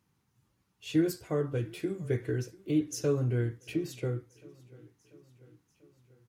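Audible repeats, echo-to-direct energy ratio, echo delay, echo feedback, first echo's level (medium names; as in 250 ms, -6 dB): 3, -21.0 dB, 690 ms, 59%, -23.0 dB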